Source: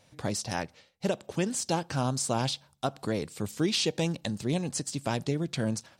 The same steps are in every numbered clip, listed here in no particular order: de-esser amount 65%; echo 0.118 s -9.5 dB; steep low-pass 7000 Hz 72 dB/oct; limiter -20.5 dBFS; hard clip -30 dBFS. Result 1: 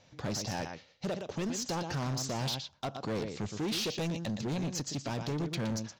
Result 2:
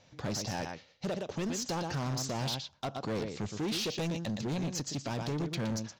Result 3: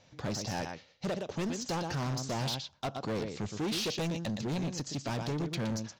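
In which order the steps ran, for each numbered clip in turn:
steep low-pass > de-esser > limiter > echo > hard clip; steep low-pass > de-esser > echo > limiter > hard clip; echo > de-esser > steep low-pass > hard clip > limiter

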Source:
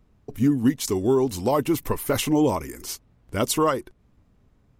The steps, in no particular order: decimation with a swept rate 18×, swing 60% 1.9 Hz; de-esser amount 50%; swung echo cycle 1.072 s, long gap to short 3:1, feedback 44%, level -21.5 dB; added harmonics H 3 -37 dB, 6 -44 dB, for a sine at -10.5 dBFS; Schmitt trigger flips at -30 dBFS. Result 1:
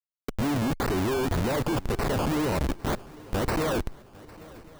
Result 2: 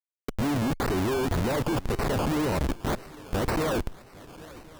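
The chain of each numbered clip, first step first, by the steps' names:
Schmitt trigger > added harmonics > decimation with a swept rate > de-esser > swung echo; Schmitt trigger > swung echo > decimation with a swept rate > de-esser > added harmonics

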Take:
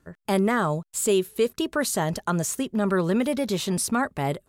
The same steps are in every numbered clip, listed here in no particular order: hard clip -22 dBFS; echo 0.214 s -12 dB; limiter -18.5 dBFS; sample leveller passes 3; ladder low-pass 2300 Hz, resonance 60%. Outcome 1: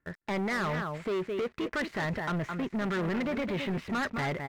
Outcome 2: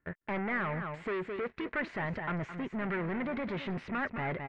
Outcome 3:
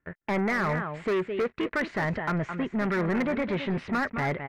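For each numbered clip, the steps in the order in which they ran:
echo > limiter > hard clip > ladder low-pass > sample leveller; sample leveller > echo > limiter > hard clip > ladder low-pass; echo > sample leveller > ladder low-pass > limiter > hard clip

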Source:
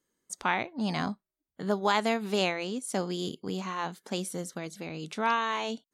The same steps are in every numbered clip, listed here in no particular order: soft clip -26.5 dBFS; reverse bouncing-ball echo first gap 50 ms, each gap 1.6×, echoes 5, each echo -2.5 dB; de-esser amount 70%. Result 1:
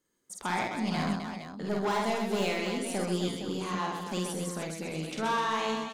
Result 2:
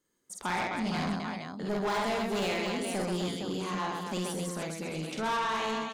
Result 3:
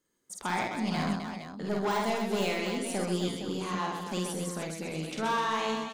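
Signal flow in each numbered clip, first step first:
de-esser > soft clip > reverse bouncing-ball echo; de-esser > reverse bouncing-ball echo > soft clip; soft clip > de-esser > reverse bouncing-ball echo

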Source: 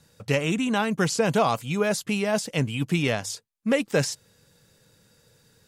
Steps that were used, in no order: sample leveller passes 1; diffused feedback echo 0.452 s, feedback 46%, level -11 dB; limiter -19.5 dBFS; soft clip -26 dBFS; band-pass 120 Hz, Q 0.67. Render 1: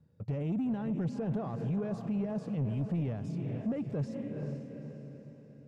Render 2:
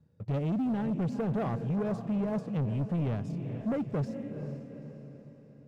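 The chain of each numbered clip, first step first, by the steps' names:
sample leveller > diffused feedback echo > limiter > band-pass > soft clip; band-pass > sample leveller > diffused feedback echo > limiter > soft clip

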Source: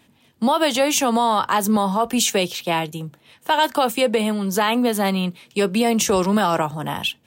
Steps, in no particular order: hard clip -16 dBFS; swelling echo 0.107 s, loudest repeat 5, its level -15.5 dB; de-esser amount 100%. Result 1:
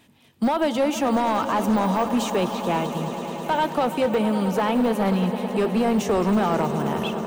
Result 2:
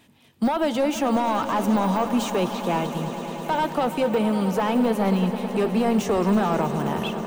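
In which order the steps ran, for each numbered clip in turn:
de-esser > swelling echo > hard clip; hard clip > de-esser > swelling echo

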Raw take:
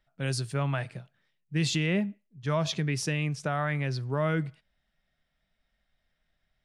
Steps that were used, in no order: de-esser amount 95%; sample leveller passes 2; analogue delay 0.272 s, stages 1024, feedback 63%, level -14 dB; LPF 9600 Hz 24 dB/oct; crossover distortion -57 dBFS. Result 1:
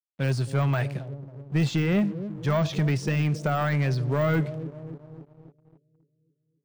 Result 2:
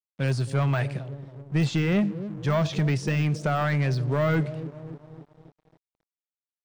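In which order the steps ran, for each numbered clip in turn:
LPF > crossover distortion > analogue delay > sample leveller > de-esser; analogue delay > sample leveller > LPF > crossover distortion > de-esser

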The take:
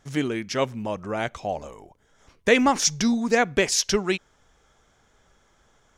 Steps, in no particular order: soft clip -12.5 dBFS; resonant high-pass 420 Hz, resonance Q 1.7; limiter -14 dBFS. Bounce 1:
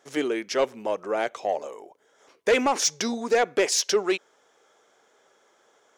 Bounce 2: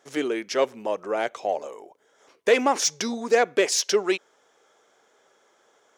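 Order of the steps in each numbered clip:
resonant high-pass > soft clip > limiter; soft clip > limiter > resonant high-pass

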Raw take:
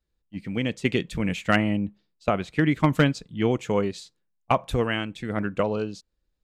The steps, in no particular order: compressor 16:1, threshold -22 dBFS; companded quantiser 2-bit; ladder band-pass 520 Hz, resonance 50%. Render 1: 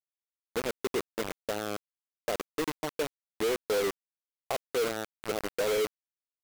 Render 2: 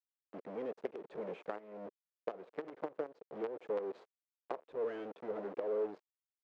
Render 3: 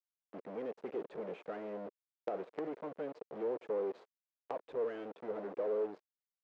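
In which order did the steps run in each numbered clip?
compressor > ladder band-pass > companded quantiser; companded quantiser > compressor > ladder band-pass; compressor > companded quantiser > ladder band-pass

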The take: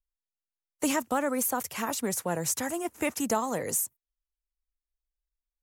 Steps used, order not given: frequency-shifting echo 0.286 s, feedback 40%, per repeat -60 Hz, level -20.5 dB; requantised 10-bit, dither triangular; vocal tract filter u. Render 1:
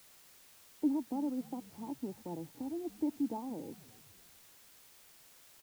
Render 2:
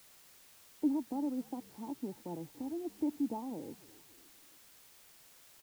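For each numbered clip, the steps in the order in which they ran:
vocal tract filter > frequency-shifting echo > requantised; frequency-shifting echo > vocal tract filter > requantised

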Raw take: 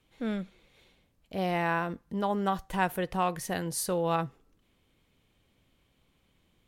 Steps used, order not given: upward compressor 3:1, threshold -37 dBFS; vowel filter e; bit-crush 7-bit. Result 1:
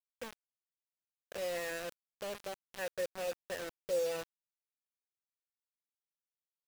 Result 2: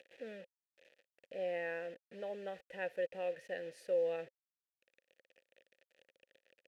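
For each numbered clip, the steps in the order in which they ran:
upward compressor > vowel filter > bit-crush; upward compressor > bit-crush > vowel filter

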